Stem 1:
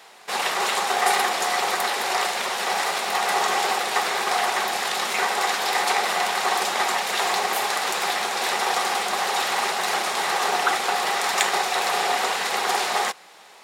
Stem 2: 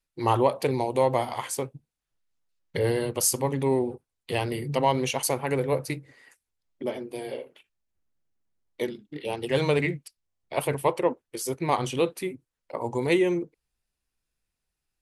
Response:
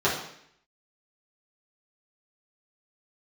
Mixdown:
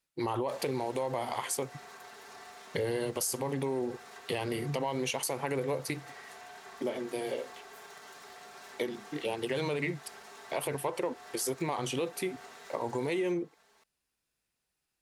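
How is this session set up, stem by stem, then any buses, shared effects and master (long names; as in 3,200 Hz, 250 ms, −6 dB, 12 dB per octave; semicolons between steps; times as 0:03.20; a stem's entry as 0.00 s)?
−12.5 dB, 0.20 s, send −22 dB, lower of the sound and its delayed copy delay 4.5 ms; downward compressor 4 to 1, threshold −30 dBFS, peak gain reduction 11.5 dB; automatic ducking −10 dB, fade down 1.30 s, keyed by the second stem
+2.0 dB, 0.00 s, no send, brickwall limiter −18.5 dBFS, peak gain reduction 9.5 dB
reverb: on, RT60 0.70 s, pre-delay 3 ms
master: high-pass filter 170 Hz 6 dB per octave; downward compressor 2.5 to 1, threshold −31 dBFS, peak gain reduction 7 dB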